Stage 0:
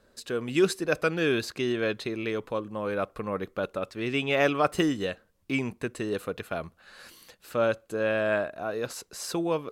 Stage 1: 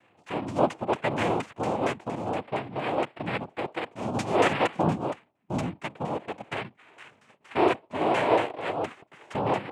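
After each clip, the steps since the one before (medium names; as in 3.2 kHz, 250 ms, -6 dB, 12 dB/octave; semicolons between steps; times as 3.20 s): LFO low-pass saw down 4.3 Hz 580–2100 Hz; noise-vocoded speech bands 4; harmonic-percussive split percussive -6 dB; trim +2 dB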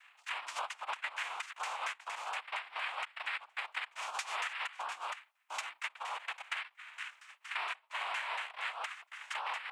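high-pass 1.2 kHz 24 dB/octave; compression 10:1, threshold -41 dBFS, peak gain reduction 18.5 dB; trim +6 dB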